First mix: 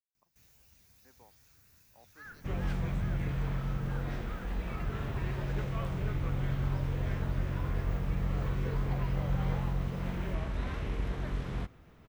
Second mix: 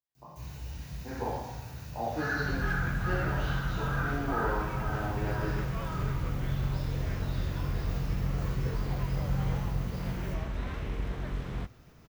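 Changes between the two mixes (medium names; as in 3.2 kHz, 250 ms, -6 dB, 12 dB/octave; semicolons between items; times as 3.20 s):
speech +9.0 dB; first sound +7.0 dB; reverb: on, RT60 1.1 s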